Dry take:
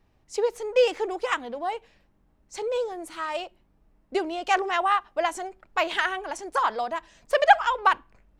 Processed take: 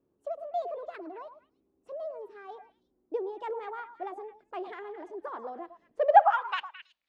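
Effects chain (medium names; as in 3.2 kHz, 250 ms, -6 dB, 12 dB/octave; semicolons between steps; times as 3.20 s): gliding tape speed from 143% -> 94%; band-pass sweep 340 Hz -> 3.9 kHz, 5.94–6.66 s; repeats whose band climbs or falls 108 ms, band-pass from 850 Hz, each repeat 1.4 oct, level -7.5 dB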